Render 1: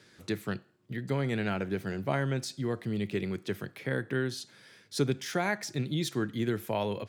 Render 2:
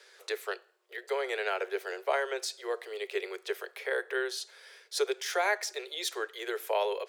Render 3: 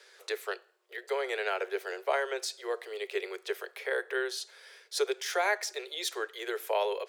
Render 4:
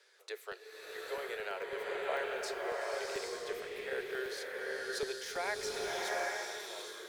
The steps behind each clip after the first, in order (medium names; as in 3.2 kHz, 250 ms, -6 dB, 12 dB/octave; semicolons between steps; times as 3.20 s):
steep high-pass 390 Hz 96 dB/octave; trim +3 dB
no audible change
fade out at the end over 1.44 s; crackling interface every 0.11 s, samples 64, zero, from 0.52 s; swelling reverb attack 810 ms, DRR -3 dB; trim -9 dB